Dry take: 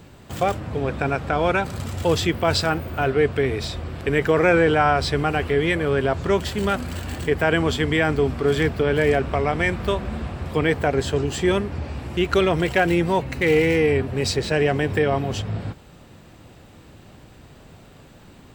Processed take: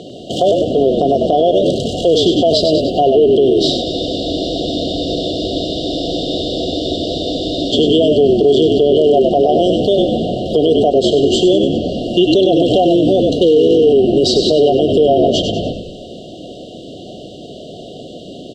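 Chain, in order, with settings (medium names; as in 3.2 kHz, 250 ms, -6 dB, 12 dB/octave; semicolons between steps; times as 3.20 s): FFT band-reject 750–2800 Hz; in parallel at +2 dB: compression, threshold -28 dBFS, peak gain reduction 13.5 dB; on the sum: band-pass 310–3900 Hz; on a send: frequency-shifting echo 98 ms, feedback 46%, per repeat -46 Hz, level -6.5 dB; on the sum: loudness maximiser +15.5 dB; spectral freeze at 3.86 s, 3.86 s; trim -2.5 dB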